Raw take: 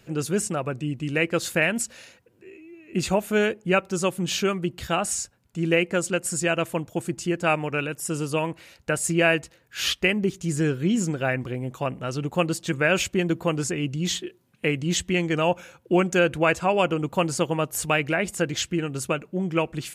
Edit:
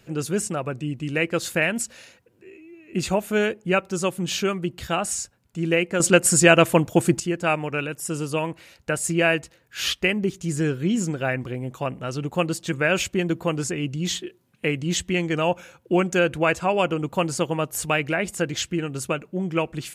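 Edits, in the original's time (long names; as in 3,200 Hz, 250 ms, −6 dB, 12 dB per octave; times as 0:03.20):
0:06.00–0:07.20: clip gain +9.5 dB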